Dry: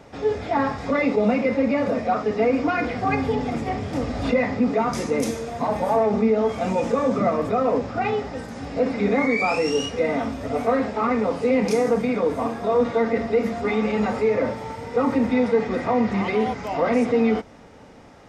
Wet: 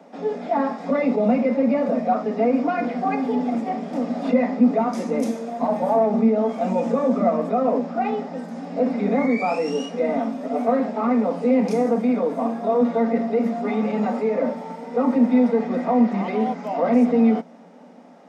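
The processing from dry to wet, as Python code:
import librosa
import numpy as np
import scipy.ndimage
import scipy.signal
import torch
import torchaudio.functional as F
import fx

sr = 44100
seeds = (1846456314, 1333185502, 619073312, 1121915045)

y = scipy.signal.sosfilt(scipy.signal.cheby1(6, 9, 170.0, 'highpass', fs=sr, output='sos'), x)
y = fx.low_shelf(y, sr, hz=270.0, db=9.5)
y = F.gain(torch.from_numpy(y), 1.5).numpy()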